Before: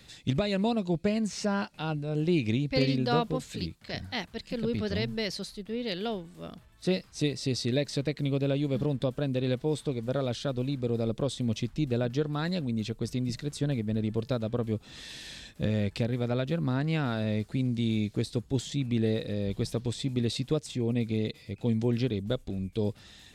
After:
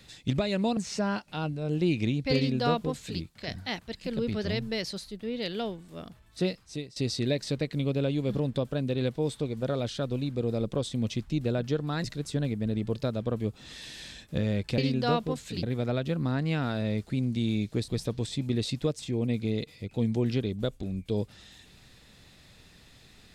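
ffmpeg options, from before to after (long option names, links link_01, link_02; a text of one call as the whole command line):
ffmpeg -i in.wav -filter_complex "[0:a]asplit=7[link_01][link_02][link_03][link_04][link_05][link_06][link_07];[link_01]atrim=end=0.772[link_08];[link_02]atrim=start=1.228:end=7.42,asetpts=PTS-STARTPTS,afade=type=out:start_time=5.632:duration=0.56:silence=0.133352[link_09];[link_03]atrim=start=7.42:end=12.502,asetpts=PTS-STARTPTS,afade=type=in:duration=0.004:curve=hsin:silence=0.133352[link_10];[link_04]atrim=start=13.308:end=16.052[link_11];[link_05]atrim=start=2.818:end=3.672[link_12];[link_06]atrim=start=16.048:end=18.302[link_13];[link_07]atrim=start=19.548[link_14];[link_09][link_10]concat=n=2:v=0:a=1[link_15];[link_08][link_15]acrossfade=duration=0.004:curve1=hsin:curve2=hsin[link_16];[link_16][link_11]acrossfade=duration=0.004:curve1=hsin:curve2=hsin[link_17];[link_17][link_12]acrossfade=duration=0.004:curve1=hsin:curve2=hsin[link_18];[link_18][link_13]acrossfade=duration=0.004:curve1=hsin:curve2=hsin[link_19];[link_19][link_14]acrossfade=duration=0.004:curve1=hsin:curve2=hsin" out.wav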